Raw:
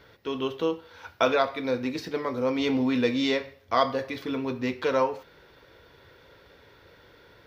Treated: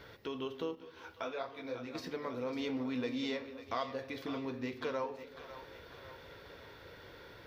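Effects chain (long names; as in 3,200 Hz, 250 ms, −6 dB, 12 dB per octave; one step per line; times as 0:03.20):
downward compressor 2 to 1, threshold −47 dBFS, peak gain reduction 16.5 dB
echo with a time of its own for lows and highs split 530 Hz, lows 192 ms, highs 548 ms, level −11.5 dB
0:00.75–0:01.95: micro pitch shift up and down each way 39 cents
level +1 dB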